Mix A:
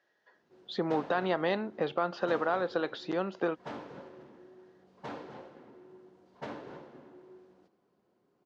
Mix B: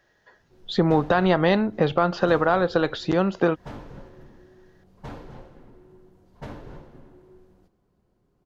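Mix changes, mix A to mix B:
speech +9.0 dB
master: remove band-pass filter 260–5,700 Hz

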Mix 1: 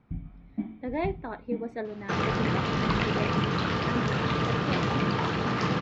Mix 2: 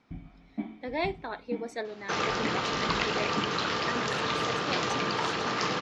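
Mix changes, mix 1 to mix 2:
speech: remove low-pass filter 1,800 Hz 6 dB per octave
first sound +5.0 dB
master: add bass and treble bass −13 dB, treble +9 dB

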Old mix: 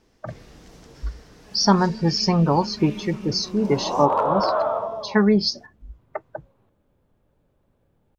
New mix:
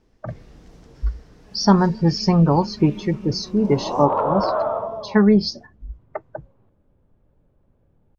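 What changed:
first sound −3.5 dB
second sound: add high-frequency loss of the air 150 metres
master: add spectral tilt −1.5 dB per octave

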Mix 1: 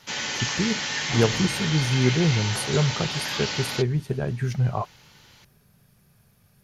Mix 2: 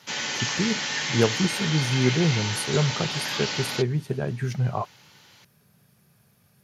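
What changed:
second sound: muted
master: add high-pass filter 110 Hz

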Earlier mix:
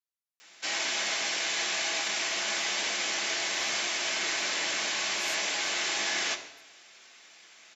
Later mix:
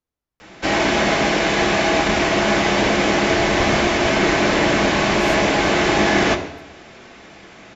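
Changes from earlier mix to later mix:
speech: add high-shelf EQ 8,800 Hz +6.5 dB
master: remove first difference

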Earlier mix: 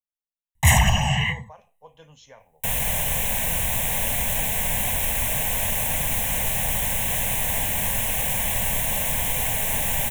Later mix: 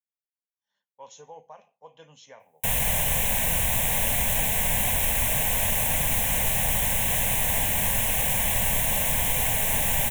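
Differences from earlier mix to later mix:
speech: add high-pass filter 180 Hz
first sound: muted

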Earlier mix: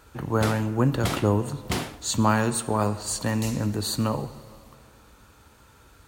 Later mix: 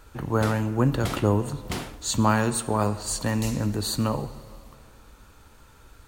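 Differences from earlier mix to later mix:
background −4.0 dB
master: remove high-pass filter 60 Hz

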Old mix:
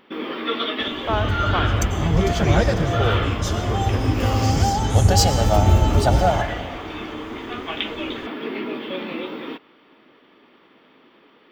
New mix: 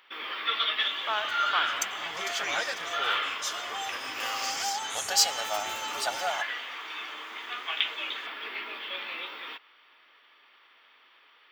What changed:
speech: remove Butterworth high-pass 300 Hz 96 dB per octave
second sound: send −11.5 dB
master: add high-pass filter 1,300 Hz 12 dB per octave

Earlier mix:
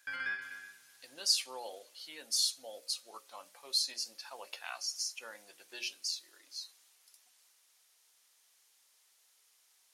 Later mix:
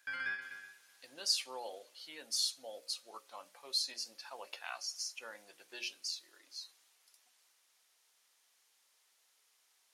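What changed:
speech: add high-shelf EQ 4,500 Hz −6 dB
background: send off

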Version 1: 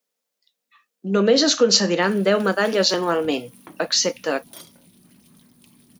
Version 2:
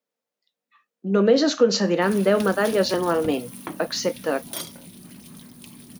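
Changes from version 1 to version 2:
speech: add high-shelf EQ 2,600 Hz −11.5 dB
background +9.5 dB

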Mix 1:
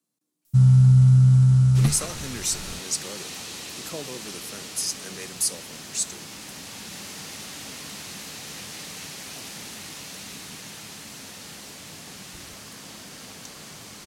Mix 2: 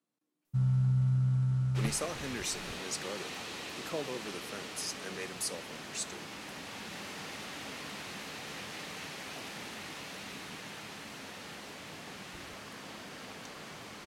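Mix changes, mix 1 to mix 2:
first sound −8.0 dB
master: add bass and treble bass −6 dB, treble −13 dB

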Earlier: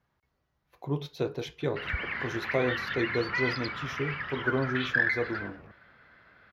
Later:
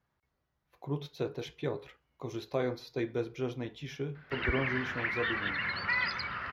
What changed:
speech −4.0 dB
background: entry +2.55 s

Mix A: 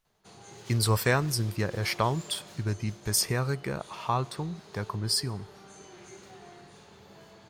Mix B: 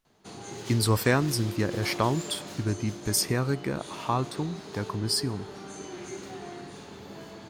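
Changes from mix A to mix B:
background +7.0 dB
master: add parametric band 280 Hz +9.5 dB 0.62 octaves

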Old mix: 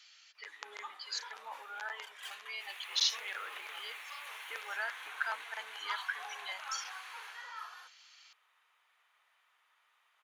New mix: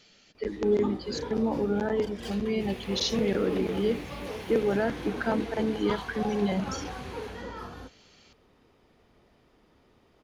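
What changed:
background: add parametric band 5,000 Hz +12 dB 0.52 octaves
master: remove high-pass filter 1,100 Hz 24 dB per octave

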